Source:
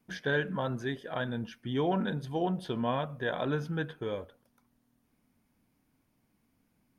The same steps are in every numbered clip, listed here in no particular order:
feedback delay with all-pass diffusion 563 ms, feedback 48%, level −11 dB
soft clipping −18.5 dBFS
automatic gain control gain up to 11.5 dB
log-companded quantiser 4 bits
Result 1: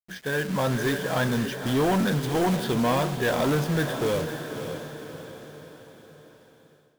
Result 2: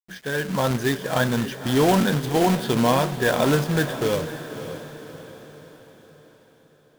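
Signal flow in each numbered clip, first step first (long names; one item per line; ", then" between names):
log-companded quantiser, then feedback delay with all-pass diffusion, then automatic gain control, then soft clipping
soft clipping, then log-companded quantiser, then automatic gain control, then feedback delay with all-pass diffusion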